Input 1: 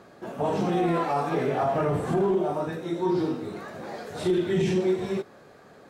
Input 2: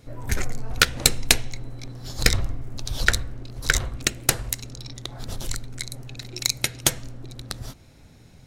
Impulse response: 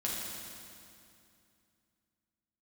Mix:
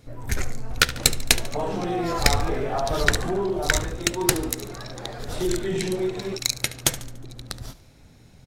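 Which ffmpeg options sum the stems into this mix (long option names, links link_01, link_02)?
-filter_complex "[0:a]lowshelf=frequency=160:gain=-8.5,adelay=1150,volume=-0.5dB[link_01];[1:a]volume=-1dB,asplit=2[link_02][link_03];[link_03]volume=-16dB,aecho=0:1:72|144|216|288|360|432|504:1|0.47|0.221|0.104|0.0488|0.0229|0.0108[link_04];[link_01][link_02][link_04]amix=inputs=3:normalize=0"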